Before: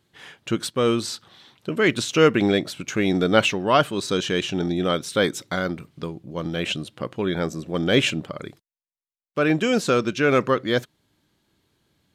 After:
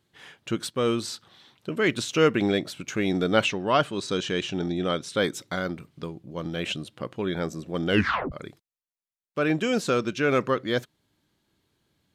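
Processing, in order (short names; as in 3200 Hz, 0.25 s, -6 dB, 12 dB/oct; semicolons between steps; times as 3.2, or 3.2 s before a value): 3.44–5.18 LPF 8700 Hz 12 dB/oct; 7.89 tape stop 0.43 s; gain -4 dB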